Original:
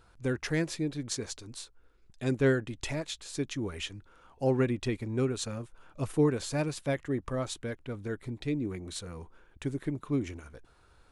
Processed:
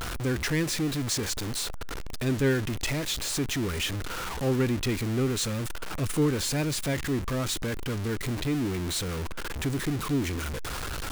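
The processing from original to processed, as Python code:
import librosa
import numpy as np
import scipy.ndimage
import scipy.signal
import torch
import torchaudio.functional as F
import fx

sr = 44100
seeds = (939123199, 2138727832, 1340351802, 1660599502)

p1 = x + 0.5 * 10.0 ** (-30.0 / 20.0) * np.sign(x)
p2 = fx.dynamic_eq(p1, sr, hz=670.0, q=1.3, threshold_db=-43.0, ratio=4.0, max_db=-7)
p3 = np.clip(10.0 ** (31.5 / 20.0) * p2, -1.0, 1.0) / 10.0 ** (31.5 / 20.0)
y = p2 + F.gain(torch.from_numpy(p3), -9.0).numpy()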